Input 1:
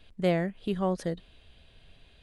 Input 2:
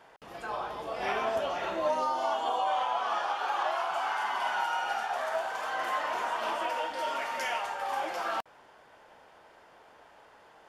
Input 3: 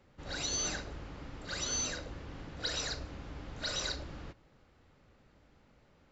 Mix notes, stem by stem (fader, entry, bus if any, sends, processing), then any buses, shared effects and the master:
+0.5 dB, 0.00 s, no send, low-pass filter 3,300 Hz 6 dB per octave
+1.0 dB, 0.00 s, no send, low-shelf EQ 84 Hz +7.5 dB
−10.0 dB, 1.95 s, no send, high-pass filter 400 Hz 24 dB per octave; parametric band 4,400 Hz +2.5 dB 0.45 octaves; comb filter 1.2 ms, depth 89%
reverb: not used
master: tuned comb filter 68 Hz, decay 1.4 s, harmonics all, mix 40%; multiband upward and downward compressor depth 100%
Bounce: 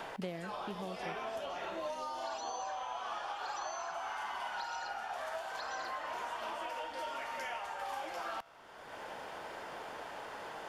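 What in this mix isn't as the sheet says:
stem 1 +0.5 dB → −11.5 dB
stem 2 +1.0 dB → −6.0 dB

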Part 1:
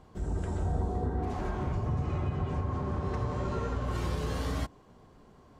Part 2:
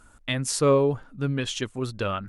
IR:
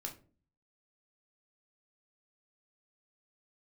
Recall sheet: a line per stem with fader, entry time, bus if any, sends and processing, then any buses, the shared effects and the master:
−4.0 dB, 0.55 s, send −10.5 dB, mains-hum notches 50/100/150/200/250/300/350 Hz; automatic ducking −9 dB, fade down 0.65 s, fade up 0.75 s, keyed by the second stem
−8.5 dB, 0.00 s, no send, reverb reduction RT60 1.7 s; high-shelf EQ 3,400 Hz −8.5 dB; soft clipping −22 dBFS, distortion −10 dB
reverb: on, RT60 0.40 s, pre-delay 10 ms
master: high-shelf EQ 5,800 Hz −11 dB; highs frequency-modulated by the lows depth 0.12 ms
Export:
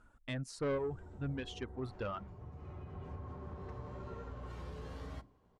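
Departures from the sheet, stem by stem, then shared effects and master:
stem 1 −4.0 dB → −14.5 dB
master: missing highs frequency-modulated by the lows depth 0.12 ms

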